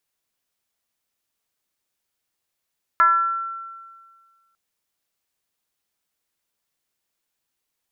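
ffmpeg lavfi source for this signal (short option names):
-f lavfi -i "aevalsrc='0.299*pow(10,-3*t/1.7)*sin(2*PI*1350*t+0.77*pow(10,-3*t/1.04)*sin(2*PI*0.26*1350*t))':d=1.55:s=44100"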